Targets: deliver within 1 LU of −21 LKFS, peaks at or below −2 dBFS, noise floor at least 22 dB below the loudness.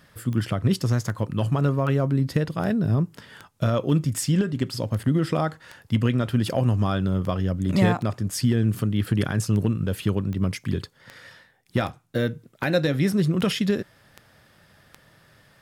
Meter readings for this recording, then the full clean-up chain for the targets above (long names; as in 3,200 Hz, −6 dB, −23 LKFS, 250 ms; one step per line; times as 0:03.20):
number of clicks 20; integrated loudness −24.5 LKFS; sample peak −6.5 dBFS; target loudness −21.0 LKFS
→ click removal
level +3.5 dB